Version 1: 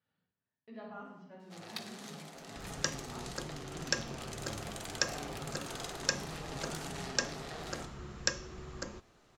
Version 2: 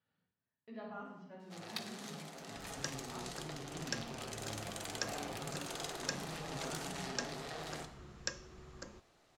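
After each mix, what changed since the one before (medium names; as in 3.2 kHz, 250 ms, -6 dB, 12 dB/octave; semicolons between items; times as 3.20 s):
second sound -8.0 dB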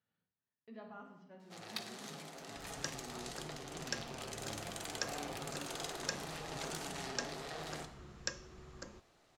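speech: send -6.5 dB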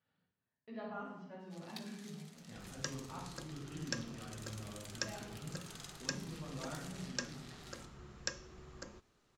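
speech: send +9.0 dB; first sound: add amplifier tone stack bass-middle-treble 5-5-5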